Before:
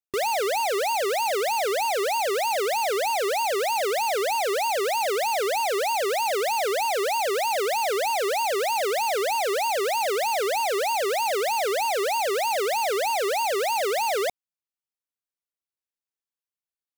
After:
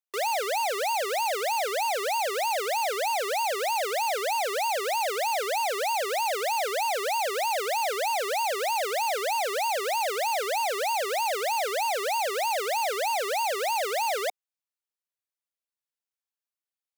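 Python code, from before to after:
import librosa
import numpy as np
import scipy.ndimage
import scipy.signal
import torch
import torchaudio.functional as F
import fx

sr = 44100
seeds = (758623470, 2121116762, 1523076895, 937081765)

y = scipy.signal.sosfilt(scipy.signal.butter(4, 470.0, 'highpass', fs=sr, output='sos'), x)
y = y * librosa.db_to_amplitude(-2.0)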